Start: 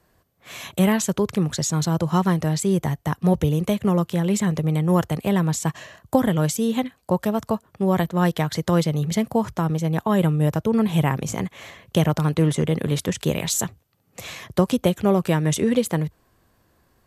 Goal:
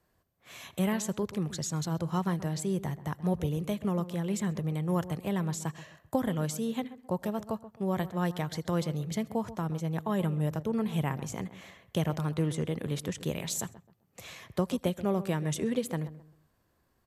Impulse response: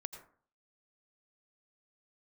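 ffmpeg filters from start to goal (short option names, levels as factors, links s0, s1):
-filter_complex "[0:a]asplit=2[s0][s1];[s1]adelay=131,lowpass=f=1300:p=1,volume=0.2,asplit=2[s2][s3];[s3]adelay=131,lowpass=f=1300:p=1,volume=0.32,asplit=2[s4][s5];[s5]adelay=131,lowpass=f=1300:p=1,volume=0.32[s6];[s0][s2][s4][s6]amix=inputs=4:normalize=0[s7];[1:a]atrim=start_sample=2205,atrim=end_sample=3528[s8];[s7][s8]afir=irnorm=-1:irlink=0,volume=0.447"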